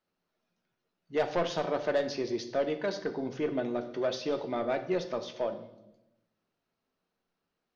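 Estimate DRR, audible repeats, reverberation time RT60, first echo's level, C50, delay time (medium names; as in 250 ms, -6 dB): 7.0 dB, no echo, 0.95 s, no echo, 11.5 dB, no echo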